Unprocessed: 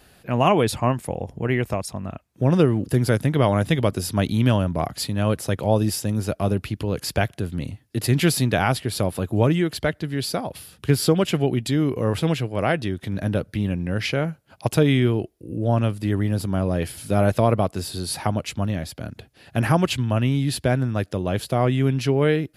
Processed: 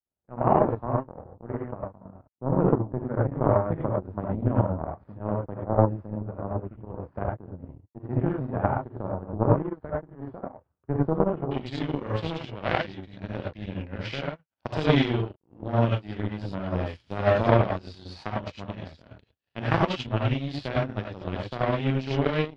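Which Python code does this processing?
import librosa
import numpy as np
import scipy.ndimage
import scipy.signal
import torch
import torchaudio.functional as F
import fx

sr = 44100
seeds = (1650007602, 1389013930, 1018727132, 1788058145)

y = fx.rev_gated(x, sr, seeds[0], gate_ms=120, shape='rising', drr_db=-5.0)
y = fx.power_curve(y, sr, exponent=2.0)
y = fx.lowpass(y, sr, hz=fx.steps((0.0, 1200.0), (11.51, 4800.0)), slope=24)
y = y * librosa.db_to_amplitude(-1.0)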